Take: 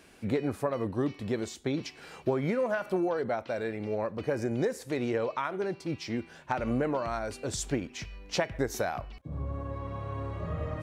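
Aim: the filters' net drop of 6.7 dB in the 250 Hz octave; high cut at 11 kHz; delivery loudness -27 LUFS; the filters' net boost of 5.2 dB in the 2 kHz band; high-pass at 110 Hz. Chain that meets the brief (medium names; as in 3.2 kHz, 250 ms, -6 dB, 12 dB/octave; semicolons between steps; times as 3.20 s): high-pass 110 Hz; low-pass 11 kHz; peaking EQ 250 Hz -9 dB; peaking EQ 2 kHz +7 dB; trim +7 dB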